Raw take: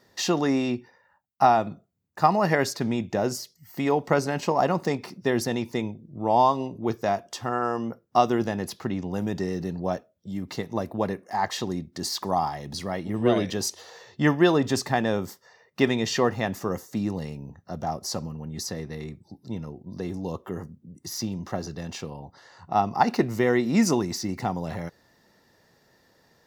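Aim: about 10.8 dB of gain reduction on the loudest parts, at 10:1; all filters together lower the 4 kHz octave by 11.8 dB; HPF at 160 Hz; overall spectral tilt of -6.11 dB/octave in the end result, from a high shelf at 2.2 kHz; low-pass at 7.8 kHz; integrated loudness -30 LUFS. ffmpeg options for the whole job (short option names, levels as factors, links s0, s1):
-af "highpass=160,lowpass=7800,highshelf=f=2200:g=-6,equalizer=f=4000:t=o:g=-9,acompressor=threshold=0.0501:ratio=10,volume=1.58"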